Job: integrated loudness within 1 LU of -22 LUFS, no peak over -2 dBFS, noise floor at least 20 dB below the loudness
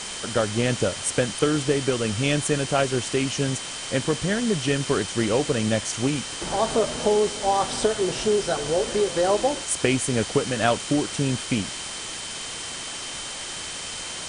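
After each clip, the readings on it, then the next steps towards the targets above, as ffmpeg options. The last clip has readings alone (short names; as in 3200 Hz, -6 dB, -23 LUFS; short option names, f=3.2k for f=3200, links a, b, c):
steady tone 3100 Hz; tone level -39 dBFS; noise floor -34 dBFS; noise floor target -45 dBFS; loudness -24.5 LUFS; peak -6.5 dBFS; loudness target -22.0 LUFS
-> -af "bandreject=f=3.1k:w=30"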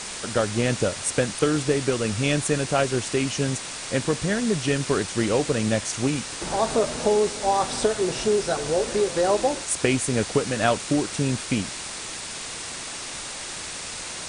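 steady tone none; noise floor -35 dBFS; noise floor target -45 dBFS
-> -af "afftdn=nr=10:nf=-35"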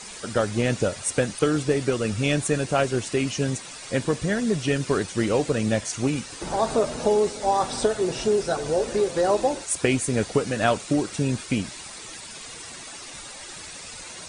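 noise floor -40 dBFS; noise floor target -45 dBFS
-> -af "afftdn=nr=6:nf=-40"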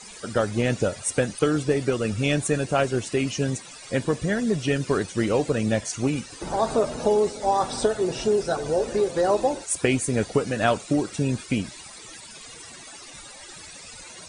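noise floor -43 dBFS; noise floor target -45 dBFS
-> -af "afftdn=nr=6:nf=-43"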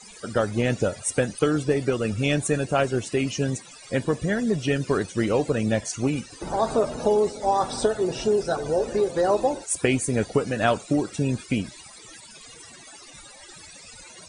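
noise floor -46 dBFS; loudness -24.5 LUFS; peak -7.0 dBFS; loudness target -22.0 LUFS
-> -af "volume=2.5dB"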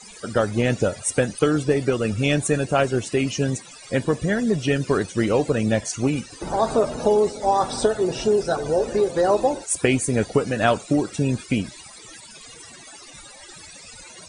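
loudness -22.0 LUFS; peak -4.5 dBFS; noise floor -44 dBFS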